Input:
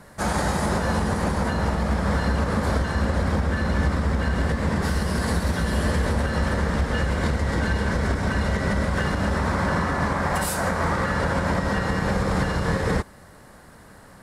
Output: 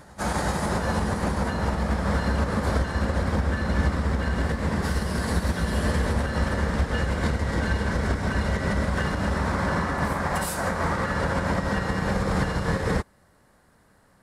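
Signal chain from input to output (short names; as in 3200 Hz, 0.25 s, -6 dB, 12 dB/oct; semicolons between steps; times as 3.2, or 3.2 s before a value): reverse echo 0.377 s -16 dB; upward expander 1.5:1, over -43 dBFS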